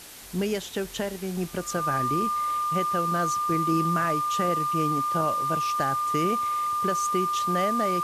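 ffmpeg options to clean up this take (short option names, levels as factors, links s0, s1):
-af "adeclick=t=4,bandreject=f=1200:w=30,afwtdn=0.0071"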